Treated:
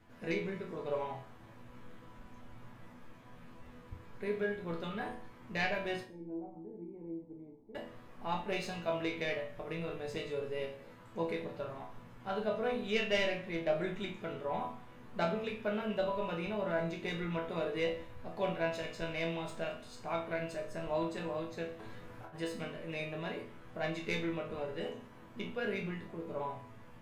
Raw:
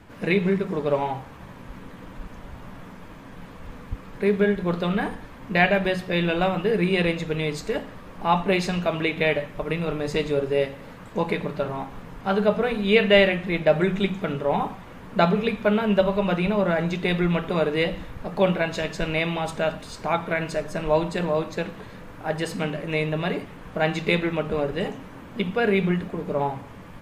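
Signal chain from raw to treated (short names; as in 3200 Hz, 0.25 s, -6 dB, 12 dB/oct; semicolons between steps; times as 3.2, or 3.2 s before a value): tracing distortion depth 0.038 ms; 6.04–7.75 vocal tract filter u; 21.79–22.36 negative-ratio compressor -33 dBFS, ratio -0.5; resonator bank E2 sus4, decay 0.37 s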